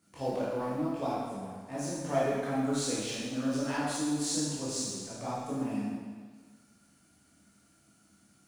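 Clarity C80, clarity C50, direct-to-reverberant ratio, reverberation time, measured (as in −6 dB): 0.5 dB, −2.5 dB, −9.0 dB, 1.5 s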